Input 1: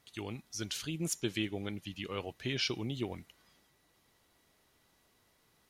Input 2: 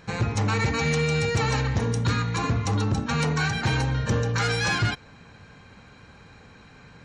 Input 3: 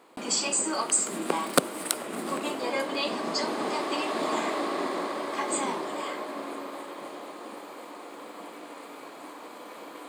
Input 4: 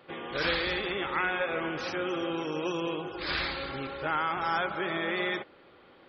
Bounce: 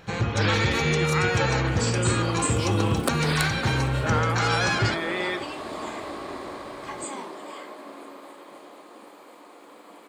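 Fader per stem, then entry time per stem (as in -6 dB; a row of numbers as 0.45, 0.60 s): -2.5, -0.5, -5.5, +2.0 dB; 0.00, 0.00, 1.50, 0.00 s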